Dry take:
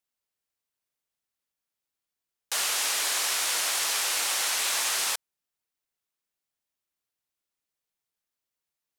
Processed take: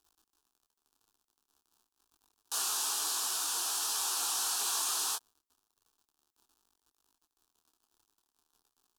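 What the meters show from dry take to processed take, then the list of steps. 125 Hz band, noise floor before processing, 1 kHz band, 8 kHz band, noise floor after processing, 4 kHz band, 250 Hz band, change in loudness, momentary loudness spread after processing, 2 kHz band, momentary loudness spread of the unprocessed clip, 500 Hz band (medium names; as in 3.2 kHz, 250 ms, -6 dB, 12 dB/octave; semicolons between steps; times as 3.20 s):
no reading, under -85 dBFS, -5.0 dB, -4.5 dB, under -85 dBFS, -7.0 dB, -4.5 dB, -5.5 dB, 4 LU, -14.0 dB, 4 LU, -10.5 dB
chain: crackle 63 per s -45 dBFS; static phaser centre 560 Hz, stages 6; detune thickener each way 15 cents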